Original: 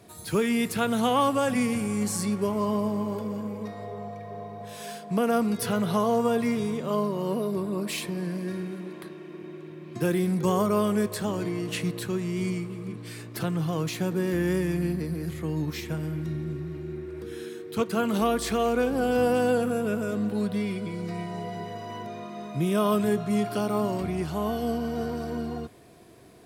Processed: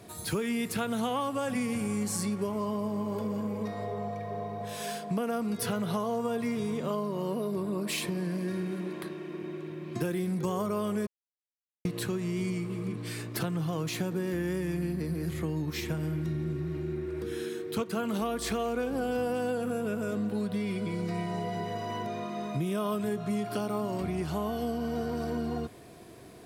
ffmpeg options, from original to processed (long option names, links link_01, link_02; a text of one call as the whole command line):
ffmpeg -i in.wav -filter_complex "[0:a]asplit=3[link_01][link_02][link_03];[link_01]atrim=end=11.07,asetpts=PTS-STARTPTS,afade=type=out:start_time=11.066:duration=0.004:curve=hsin[link_04];[link_02]atrim=start=11.07:end=11.85,asetpts=PTS-STARTPTS,volume=0[link_05];[link_03]atrim=start=11.85,asetpts=PTS-STARTPTS,afade=type=in:duration=0.004:curve=hsin[link_06];[link_04][link_05][link_06]concat=n=3:v=0:a=1,acompressor=threshold=-31dB:ratio=5,volume=2.5dB" out.wav